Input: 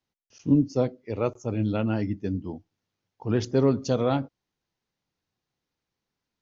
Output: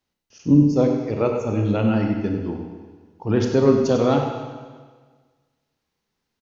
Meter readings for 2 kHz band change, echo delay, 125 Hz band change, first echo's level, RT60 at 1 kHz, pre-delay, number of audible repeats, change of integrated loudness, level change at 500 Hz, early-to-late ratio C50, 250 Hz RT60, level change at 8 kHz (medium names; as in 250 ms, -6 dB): +6.0 dB, 96 ms, +5.5 dB, -9.5 dB, 1.5 s, 28 ms, 1, +6.5 dB, +6.5 dB, 3.0 dB, 1.5 s, no reading